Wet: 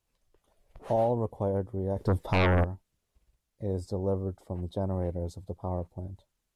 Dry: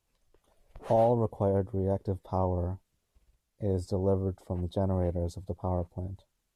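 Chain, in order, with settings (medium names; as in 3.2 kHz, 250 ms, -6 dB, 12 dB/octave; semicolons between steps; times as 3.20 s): 1.96–2.63 s: sine folder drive 7 dB -> 12 dB, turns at -17.5 dBFS; trim -2 dB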